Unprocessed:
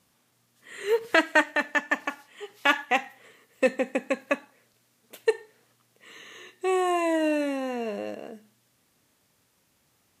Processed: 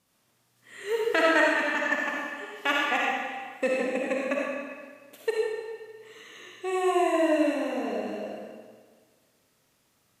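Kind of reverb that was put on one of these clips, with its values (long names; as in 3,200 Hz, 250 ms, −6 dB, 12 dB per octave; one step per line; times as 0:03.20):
comb and all-pass reverb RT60 1.6 s, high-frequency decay 0.9×, pre-delay 20 ms, DRR −4 dB
level −5.5 dB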